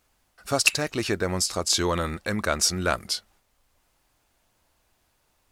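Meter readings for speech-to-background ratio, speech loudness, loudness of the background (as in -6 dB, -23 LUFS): -0.5 dB, -25.5 LUFS, -25.0 LUFS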